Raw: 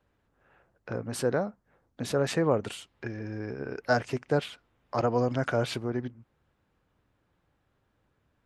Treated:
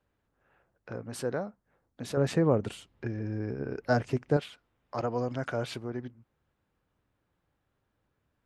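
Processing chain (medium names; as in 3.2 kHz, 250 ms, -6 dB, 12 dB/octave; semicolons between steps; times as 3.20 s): 2.17–4.37 s: bass shelf 470 Hz +9.5 dB; trim -5 dB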